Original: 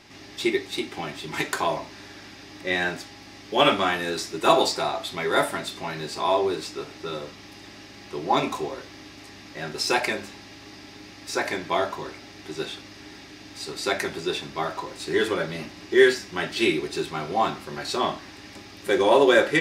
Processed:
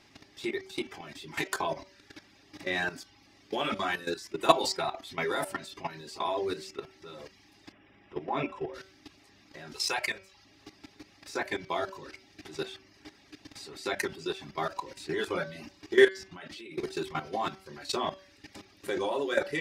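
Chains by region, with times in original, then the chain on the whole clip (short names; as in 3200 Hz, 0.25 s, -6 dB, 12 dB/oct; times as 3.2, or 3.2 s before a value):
7.72–8.74 polynomial smoothing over 25 samples + careless resampling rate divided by 2×, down none, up filtered
9.73–10.45 bell 260 Hz -11.5 dB 1.5 oct + notches 60/120/180/240/300/360/420/480/540 Hz
16.08–16.78 high shelf 8400 Hz -6 dB + compressor 8:1, threshold -34 dBFS
whole clip: reverb removal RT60 0.67 s; level quantiser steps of 15 dB; de-hum 191.1 Hz, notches 18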